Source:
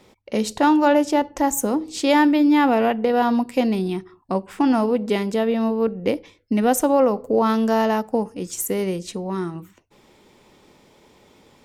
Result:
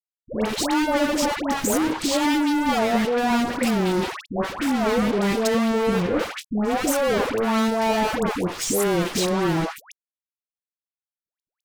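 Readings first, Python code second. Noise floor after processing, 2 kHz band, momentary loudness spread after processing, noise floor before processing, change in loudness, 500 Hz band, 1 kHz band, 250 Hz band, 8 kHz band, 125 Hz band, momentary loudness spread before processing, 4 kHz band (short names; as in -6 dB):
under -85 dBFS, +2.0 dB, 5 LU, -55 dBFS, -2.0 dB, -2.0 dB, -2.0 dB, -2.5 dB, +2.0 dB, +2.5 dB, 11 LU, +4.5 dB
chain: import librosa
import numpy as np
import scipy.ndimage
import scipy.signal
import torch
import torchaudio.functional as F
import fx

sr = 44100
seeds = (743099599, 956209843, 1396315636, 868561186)

p1 = fx.low_shelf(x, sr, hz=200.0, db=-6.5)
p2 = fx.rider(p1, sr, range_db=5, speed_s=0.5)
p3 = p1 + (p2 * 10.0 ** (-0.5 / 20.0))
p4 = scipy.signal.sosfilt(scipy.signal.butter(2, 91.0, 'highpass', fs=sr, output='sos'), p3)
p5 = fx.fuzz(p4, sr, gain_db=33.0, gate_db=-34.0)
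p6 = fx.transient(p5, sr, attack_db=-4, sustain_db=10)
p7 = fx.high_shelf(p6, sr, hz=5500.0, db=-6.5)
p8 = fx.dispersion(p7, sr, late='highs', ms=139.0, hz=860.0)
y = p8 * 10.0 ** (-6.5 / 20.0)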